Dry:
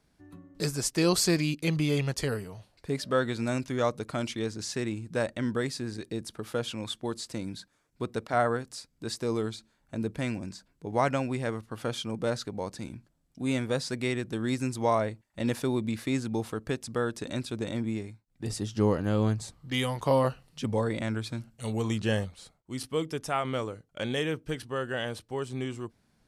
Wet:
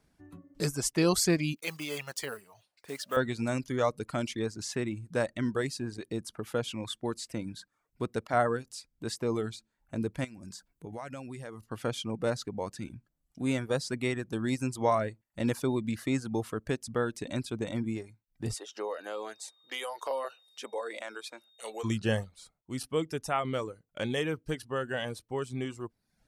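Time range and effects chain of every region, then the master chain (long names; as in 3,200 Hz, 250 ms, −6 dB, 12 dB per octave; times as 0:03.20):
0:01.56–0:03.17: one scale factor per block 5 bits + high-pass filter 930 Hz 6 dB per octave
0:10.24–0:11.64: high-shelf EQ 6,400 Hz +8.5 dB + downward compressor 4 to 1, threshold −38 dBFS
0:18.54–0:21.83: high-pass filter 440 Hz 24 dB per octave + downward compressor 2 to 1, threshold −33 dBFS + steady tone 3,700 Hz −57 dBFS
whole clip: reverb reduction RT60 0.63 s; parametric band 4,100 Hz −3 dB 0.82 octaves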